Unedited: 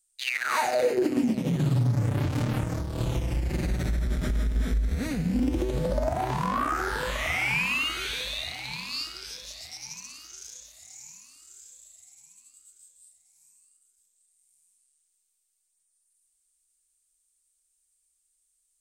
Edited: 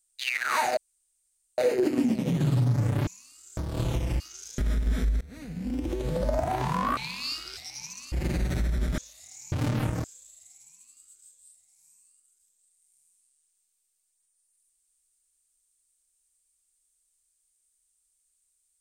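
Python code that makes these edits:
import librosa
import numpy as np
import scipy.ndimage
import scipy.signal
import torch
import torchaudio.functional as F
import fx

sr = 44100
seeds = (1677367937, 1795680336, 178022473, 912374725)

y = fx.edit(x, sr, fx.insert_room_tone(at_s=0.77, length_s=0.81),
    fx.swap(start_s=2.26, length_s=0.52, other_s=11.11, other_length_s=0.5),
    fx.swap(start_s=3.41, length_s=0.86, other_s=10.19, other_length_s=0.38),
    fx.fade_in_from(start_s=4.9, length_s=1.1, floor_db=-22.5),
    fx.cut(start_s=6.66, length_s=2.0),
    fx.cut(start_s=9.26, length_s=0.38), tone=tone)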